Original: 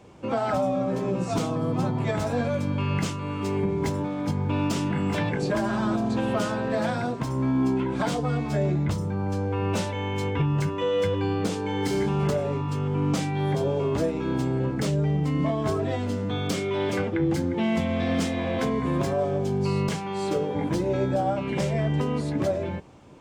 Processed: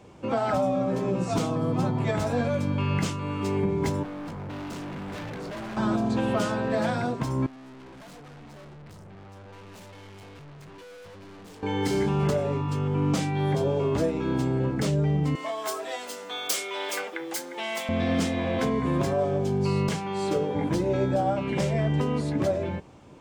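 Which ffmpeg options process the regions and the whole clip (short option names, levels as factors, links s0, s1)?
-filter_complex "[0:a]asettb=1/sr,asplit=3[s0][s1][s2];[s0]atrim=end=4.034[s3];[s1]atrim=start=4.03:end=5.77,asetpts=PTS-STARTPTS,afade=t=in:d=0.004:c=qsin,afade=t=out:st=1.736:d=0.004:c=qsin,highshelf=f=2700:g=-7,bandreject=f=50:t=h:w=6,bandreject=f=100:t=h:w=6,bandreject=f=150:t=h:w=6,bandreject=f=200:t=h:w=6,volume=53.1,asoftclip=hard,volume=0.0188[s4];[s2]atrim=start=5.766[s5];[s3][s4]acrossfade=d=0.004:c1=hsin:c2=qsin[s6];[s6][s5]acrossfade=d=0.004:c1=qsin:c2=hsin,asettb=1/sr,asplit=3[s7][s8][s9];[s7]atrim=end=7.464[s10];[s8]atrim=start=7.46:end=11.63,asetpts=PTS-STARTPTS,afade=t=in:d=0.004:c=qsin,afade=t=out:st=4.166:d=0.004:c=qsin,flanger=delay=2.2:depth=8.4:regen=72:speed=1.3:shape=triangular,aeval=exprs='(tanh(178*val(0)+0.2)-tanh(0.2))/178':c=same[s11];[s9]atrim=start=11.626[s12];[s10][s11]acrossfade=d=0.004:c1=hsin:c2=qsin[s13];[s13][s12]acrossfade=d=0.004:c1=qsin:c2=hsin,asettb=1/sr,asplit=3[s14][s15][s16];[s14]atrim=end=15.354[s17];[s15]atrim=start=15.35:end=17.89,asetpts=PTS-STARTPTS,afade=t=in:d=0.004:c=qsin,afade=t=out:st=2.536:d=0.004:c=qsin,highpass=590,aemphasis=mode=production:type=bsi[s18];[s16]atrim=start=17.886[s19];[s17][s18]acrossfade=d=0.004:c1=hsin:c2=qsin[s20];[s20][s19]acrossfade=d=0.004:c1=qsin:c2=hsin"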